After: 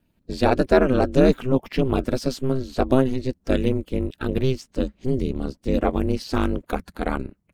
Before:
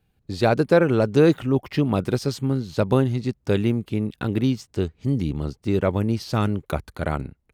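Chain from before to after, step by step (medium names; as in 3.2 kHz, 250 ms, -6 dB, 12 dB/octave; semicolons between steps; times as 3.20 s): coarse spectral quantiser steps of 15 dB; ring modulator 130 Hz; trim +3.5 dB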